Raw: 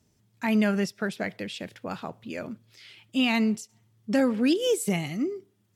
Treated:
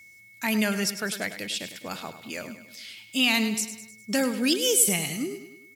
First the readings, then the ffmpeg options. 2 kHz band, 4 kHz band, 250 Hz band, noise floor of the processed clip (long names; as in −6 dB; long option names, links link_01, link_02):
+4.0 dB, +7.0 dB, −3.0 dB, −52 dBFS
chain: -filter_complex "[0:a]crystalizer=i=6:c=0,aeval=exprs='val(0)+0.00562*sin(2*PI*2200*n/s)':channel_layout=same,asplit=2[link_01][link_02];[link_02]aecho=0:1:102|204|306|408|510:0.266|0.136|0.0692|0.0353|0.018[link_03];[link_01][link_03]amix=inputs=2:normalize=0,volume=-3.5dB"